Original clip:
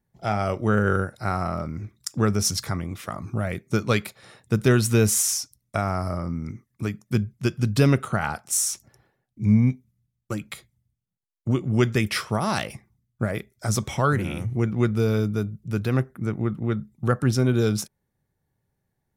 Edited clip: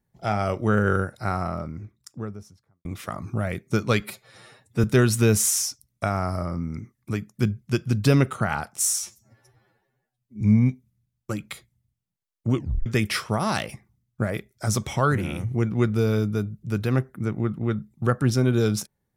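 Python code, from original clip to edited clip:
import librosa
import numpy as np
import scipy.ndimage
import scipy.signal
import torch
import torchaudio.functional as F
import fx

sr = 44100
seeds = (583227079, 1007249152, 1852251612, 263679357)

y = fx.studio_fade_out(x, sr, start_s=1.11, length_s=1.74)
y = fx.edit(y, sr, fx.stretch_span(start_s=4.0, length_s=0.56, factor=1.5),
    fx.stretch_span(start_s=8.71, length_s=0.71, factor=2.0),
    fx.tape_stop(start_s=11.57, length_s=0.3), tone=tone)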